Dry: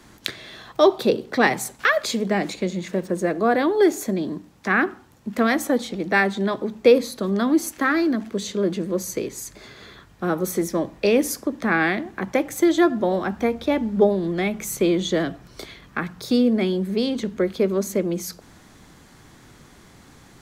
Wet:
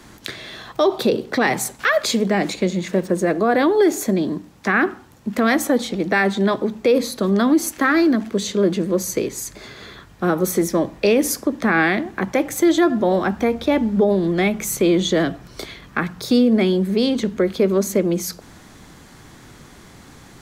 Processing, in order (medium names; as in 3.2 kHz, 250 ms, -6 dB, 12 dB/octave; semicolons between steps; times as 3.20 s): peak limiter -13 dBFS, peak gain reduction 9.5 dB; trim +5 dB